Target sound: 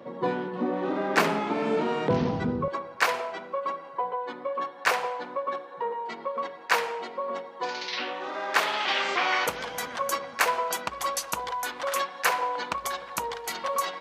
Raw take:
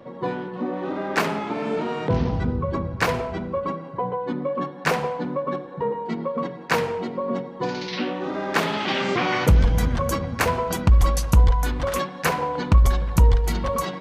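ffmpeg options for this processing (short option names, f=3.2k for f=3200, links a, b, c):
-af "asetnsamples=n=441:p=0,asendcmd='2.68 highpass f 690',highpass=180"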